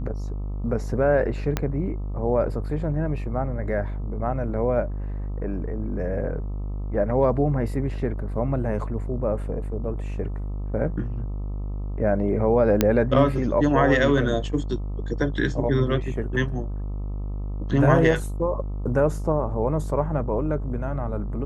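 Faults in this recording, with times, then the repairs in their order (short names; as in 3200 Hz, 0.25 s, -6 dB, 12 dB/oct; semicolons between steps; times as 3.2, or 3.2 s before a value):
buzz 50 Hz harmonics 26 -29 dBFS
1.57 pop -9 dBFS
12.81 pop -4 dBFS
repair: de-click; de-hum 50 Hz, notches 26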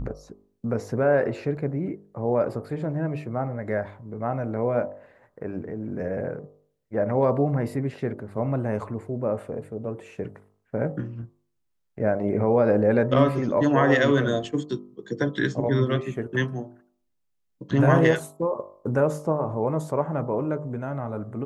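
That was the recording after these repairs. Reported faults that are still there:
1.57 pop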